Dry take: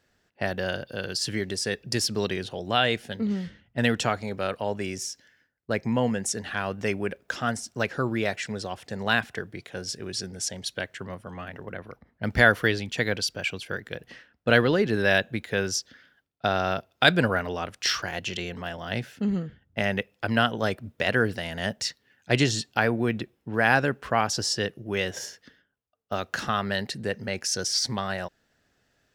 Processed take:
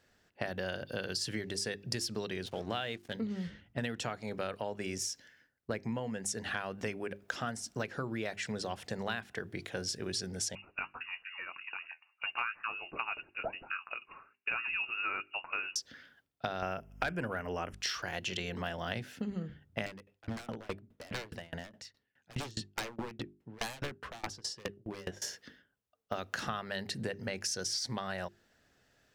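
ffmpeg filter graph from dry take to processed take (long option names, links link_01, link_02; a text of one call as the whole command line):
ffmpeg -i in.wav -filter_complex "[0:a]asettb=1/sr,asplit=3[link_01][link_02][link_03];[link_01]atrim=end=2.464[link_04];[link_02]atrim=start=2.46:end=3.13,asetpts=PTS-STARTPTS,afade=type=in:duration=0.004:curve=qsin,afade=type=out:start_time=0.666:duration=0.004:curve=qsin,lowpass=9700,aeval=exprs='sgn(val(0))*max(abs(val(0))-0.00473,0)':channel_layout=same[link_05];[link_03]atrim=start=3.126[link_06];[link_04][link_05]acrossfade=duration=0.004:curve1=hsin:curve2=qsin[link_07];[link_07][link_06]acrossfade=duration=0.004:curve1=qsin:curve2=hsin,asettb=1/sr,asplit=3[link_08][link_09][link_10];[link_08]atrim=end=10.554[link_11];[link_09]atrim=start=10.55:end=15.76,asetpts=PTS-STARTPTS,afade=type=in:duration=0.004:curve=qsin,afade=type=out:start_time=5.206:duration=0.004:curve=qsin,highpass=260,flanger=delay=4.1:depth=8.4:regen=51:speed=1.1:shape=sinusoidal,lowpass=frequency=2600:width_type=q:width=0.5098,lowpass=frequency=2600:width_type=q:width=0.6013,lowpass=frequency=2600:width_type=q:width=0.9,lowpass=frequency=2600:width_type=q:width=2.563,afreqshift=-3000[link_12];[link_10]atrim=start=15.756[link_13];[link_11][link_12]acrossfade=duration=0.004:curve1=hsin:curve2=qsin[link_14];[link_14][link_13]acrossfade=duration=0.004:curve1=qsin:curve2=hsin,asettb=1/sr,asplit=3[link_15][link_16][link_17];[link_15]atrim=end=16.624[link_18];[link_16]atrim=start=16.62:end=17.73,asetpts=PTS-STARTPTS,afade=type=in:duration=0.004:curve=qsin,afade=type=out:start_time=1.106:duration=0.004:curve=qsin,asuperstop=centerf=4000:order=8:qfactor=2.1,aeval=exprs='val(0)+0.00891*(sin(2*PI*50*n/s)+sin(2*PI*2*50*n/s)/2+sin(2*PI*3*50*n/s)/3+sin(2*PI*4*50*n/s)/4+sin(2*PI*5*50*n/s)/5)':channel_layout=same,aeval=exprs='0.631*sin(PI/2*1.58*val(0)/0.631)':channel_layout=same[link_19];[link_17]atrim=start=17.726[link_20];[link_18][link_19]acrossfade=duration=0.004:curve1=hsin:curve2=qsin[link_21];[link_21][link_20]acrossfade=duration=0.004:curve1=qsin:curve2=hsin,asettb=1/sr,asplit=3[link_22][link_23][link_24];[link_22]atrim=end=19.864[link_25];[link_23]atrim=start=19.86:end=25.22,asetpts=PTS-STARTPTS,afade=type=in:duration=0.004:curve=qsin,afade=type=out:start_time=5.356:duration=0.004:curve=qsin,highshelf=frequency=4700:gain=-9.5,aeval=exprs='0.0708*(abs(mod(val(0)/0.0708+3,4)-2)-1)':channel_layout=same,aeval=exprs='val(0)*pow(10,-29*if(lt(mod(4.8*n/s,1),2*abs(4.8)/1000),1-mod(4.8*n/s,1)/(2*abs(4.8)/1000),(mod(4.8*n/s,1)-2*abs(4.8)/1000)/(1-2*abs(4.8)/1000))/20)':channel_layout=same[link_26];[link_24]atrim=start=25.216[link_27];[link_25][link_26]acrossfade=duration=0.004:curve1=hsin:curve2=qsin[link_28];[link_28][link_27]acrossfade=duration=0.004:curve1=qsin:curve2=hsin,acompressor=threshold=-32dB:ratio=12,bandreject=frequency=50:width_type=h:width=6,bandreject=frequency=100:width_type=h:width=6,bandreject=frequency=150:width_type=h:width=6,bandreject=frequency=200:width_type=h:width=6,bandreject=frequency=250:width_type=h:width=6,bandreject=frequency=300:width_type=h:width=6,bandreject=frequency=350:width_type=h:width=6,bandreject=frequency=400:width_type=h:width=6" out.wav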